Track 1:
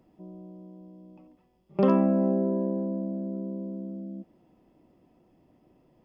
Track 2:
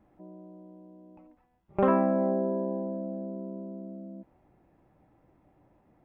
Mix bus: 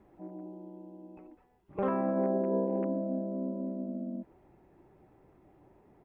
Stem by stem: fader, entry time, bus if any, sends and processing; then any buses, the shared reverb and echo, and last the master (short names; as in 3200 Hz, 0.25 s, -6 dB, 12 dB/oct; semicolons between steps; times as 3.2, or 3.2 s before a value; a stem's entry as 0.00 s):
-4.5 dB, 0.00 s, no send, sine-wave speech; compressor, threshold -33 dBFS, peak gain reduction 14 dB
+1.5 dB, 0.7 ms, no send, dry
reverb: off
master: limiter -21.5 dBFS, peak gain reduction 11.5 dB